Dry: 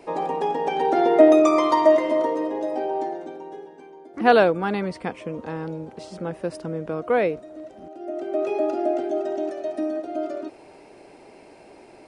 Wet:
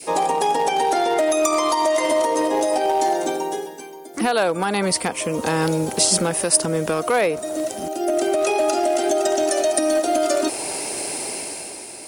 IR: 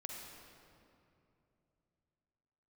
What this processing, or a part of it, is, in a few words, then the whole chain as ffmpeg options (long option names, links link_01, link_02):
FM broadcast chain: -filter_complex "[0:a]adynamicequalizer=threshold=0.0251:dfrequency=840:dqfactor=0.95:tfrequency=840:tqfactor=0.95:attack=5:release=100:ratio=0.375:range=2.5:mode=boostabove:tftype=bell,highpass=59,dynaudnorm=framelen=130:gausssize=11:maxgain=10dB,acrossover=split=890|1800[link_01][link_02][link_03];[link_01]acompressor=threshold=-20dB:ratio=4[link_04];[link_02]acompressor=threshold=-25dB:ratio=4[link_05];[link_03]acompressor=threshold=-38dB:ratio=4[link_06];[link_04][link_05][link_06]amix=inputs=3:normalize=0,aemphasis=mode=production:type=75fm,alimiter=limit=-16.5dB:level=0:latency=1:release=225,asoftclip=type=hard:threshold=-18.5dB,lowpass=frequency=15000:width=0.5412,lowpass=frequency=15000:width=1.3066,aemphasis=mode=production:type=75fm,volume=6dB"